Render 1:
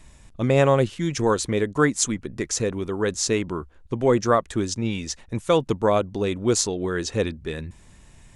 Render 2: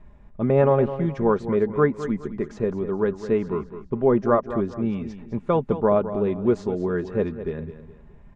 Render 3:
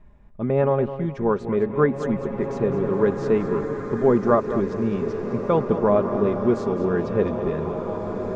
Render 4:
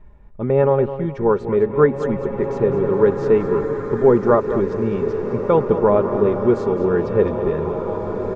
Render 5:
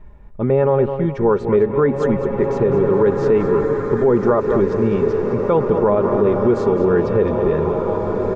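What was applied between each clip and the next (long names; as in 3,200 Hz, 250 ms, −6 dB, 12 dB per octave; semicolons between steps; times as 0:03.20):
low-pass filter 1,200 Hz 12 dB per octave; comb filter 4.9 ms, depth 45%; repeating echo 209 ms, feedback 34%, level −12 dB
speech leveller within 3 dB 2 s; slow-attack reverb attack 2,170 ms, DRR 5 dB
high-shelf EQ 3,800 Hz −7 dB; comb filter 2.2 ms, depth 32%; level +3.5 dB
brickwall limiter −11 dBFS, peak gain reduction 8.5 dB; level +4 dB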